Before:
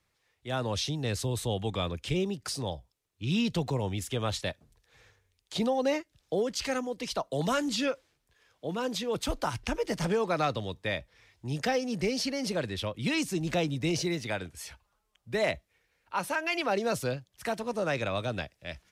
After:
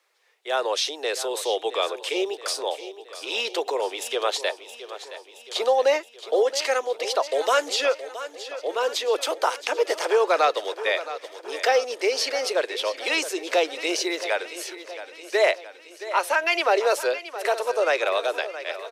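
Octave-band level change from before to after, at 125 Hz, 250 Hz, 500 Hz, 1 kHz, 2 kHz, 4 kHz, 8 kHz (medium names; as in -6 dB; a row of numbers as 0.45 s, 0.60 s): under -40 dB, -5.5 dB, +9.0 dB, +9.0 dB, +9.0 dB, +8.0 dB, +7.0 dB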